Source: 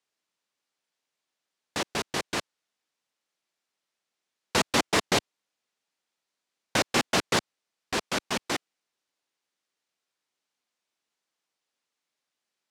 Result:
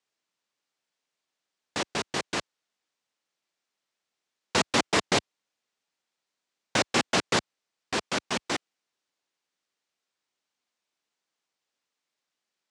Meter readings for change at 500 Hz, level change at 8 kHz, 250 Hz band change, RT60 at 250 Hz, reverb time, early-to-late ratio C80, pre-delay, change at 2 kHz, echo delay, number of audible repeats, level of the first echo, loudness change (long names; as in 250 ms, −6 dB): 0.0 dB, −0.5 dB, 0.0 dB, no reverb audible, no reverb audible, no reverb audible, no reverb audible, 0.0 dB, no echo audible, no echo audible, no echo audible, 0.0 dB